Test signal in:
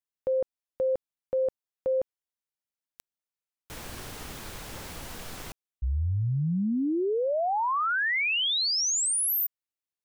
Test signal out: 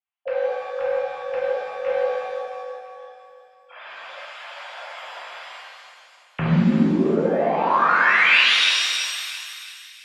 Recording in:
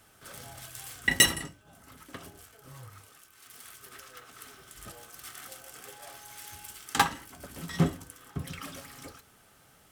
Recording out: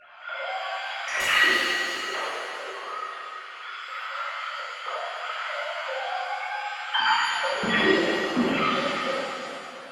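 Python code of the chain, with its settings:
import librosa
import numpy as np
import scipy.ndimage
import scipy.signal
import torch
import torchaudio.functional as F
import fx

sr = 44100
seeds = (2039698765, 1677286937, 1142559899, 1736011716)

y = fx.sine_speech(x, sr)
y = fx.fold_sine(y, sr, drive_db=4, ceiling_db=-13.5)
y = fx.over_compress(y, sr, threshold_db=-29.0, ratio=-1.0)
y = fx.echo_feedback(y, sr, ms=334, feedback_pct=47, wet_db=-10)
y = fx.rev_shimmer(y, sr, seeds[0], rt60_s=1.6, semitones=7, shimmer_db=-8, drr_db=-8.5)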